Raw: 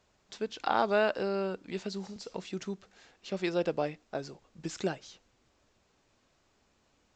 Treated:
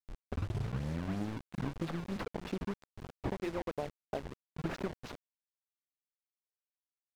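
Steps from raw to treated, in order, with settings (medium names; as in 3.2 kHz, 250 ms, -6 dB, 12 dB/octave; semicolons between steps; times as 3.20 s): tape start-up on the opening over 2.26 s; treble shelf 4 kHz +10 dB; hum notches 60/120/180/240/300/360 Hz; compression 12:1, threshold -45 dBFS, peak gain reduction 20.5 dB; decimation with a swept rate 20×, swing 160% 3.1 Hz; hysteresis with a dead band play -47.5 dBFS; bit crusher 10-bit; slew-rate limiter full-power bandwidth 5.7 Hz; trim +13.5 dB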